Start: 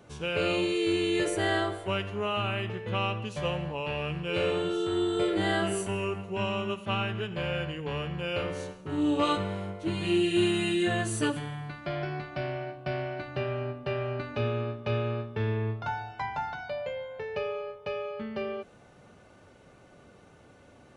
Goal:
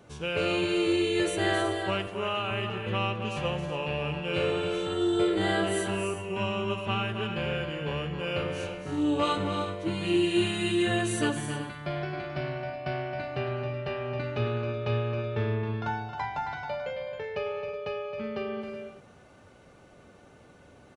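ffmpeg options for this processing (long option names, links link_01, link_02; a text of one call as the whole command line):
ffmpeg -i in.wav -filter_complex "[0:a]asettb=1/sr,asplit=3[link_01][link_02][link_03];[link_01]atrim=end=2.074[link_04];[link_02]atrim=start=2.07:end=2.51,asetpts=PTS-STARTPTS,afade=type=in:duration=0.004:curve=qsin,afade=type=out:start_time=0.436:duration=0.004:curve=qsin,highpass=frequency=260:poles=1[link_05];[link_03]atrim=start=2.506[link_06];[link_04][link_05]acrossfade=duration=0.004:curve1=hsin:curve2=qsin[link_07];[link_07][link_06]acrossfade=duration=0.004:curve1=qsin:curve2=hsin,asplit=2[link_08][link_09];[link_09]aecho=0:1:269|318|373:0.398|0.211|0.211[link_10];[link_08][link_10]amix=inputs=2:normalize=0" out.wav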